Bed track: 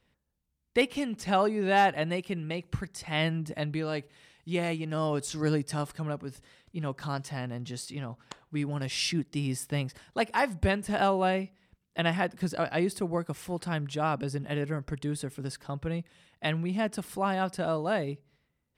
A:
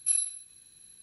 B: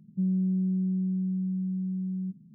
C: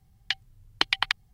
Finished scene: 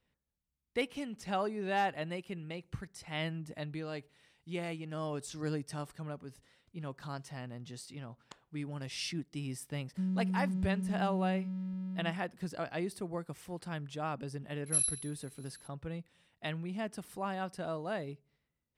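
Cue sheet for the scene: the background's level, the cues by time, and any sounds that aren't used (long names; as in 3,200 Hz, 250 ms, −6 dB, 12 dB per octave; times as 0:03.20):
bed track −8.5 dB
0:09.80: mix in B −6.5 dB + dead-zone distortion −50.5 dBFS
0:14.66: mix in A −3.5 dB
not used: C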